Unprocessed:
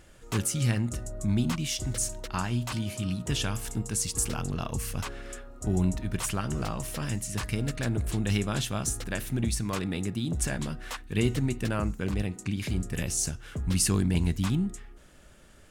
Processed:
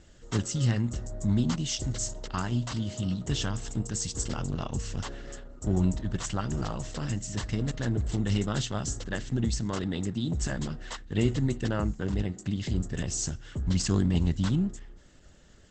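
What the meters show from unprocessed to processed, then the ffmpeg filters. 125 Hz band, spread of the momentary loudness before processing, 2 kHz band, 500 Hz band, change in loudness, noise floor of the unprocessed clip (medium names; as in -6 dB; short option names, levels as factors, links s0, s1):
+0.5 dB, 7 LU, -3.0 dB, 0.0 dB, -0.5 dB, -53 dBFS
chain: -filter_complex "[0:a]acrossover=split=1200[s0][s1];[s0]adynamicsmooth=sensitivity=4.5:basefreq=900[s2];[s1]volume=15.8,asoftclip=hard,volume=0.0631[s3];[s2][s3]amix=inputs=2:normalize=0,asuperstop=centerf=2400:order=8:qfactor=5.1,volume=1.12" -ar 48000 -c:a libopus -b:a 12k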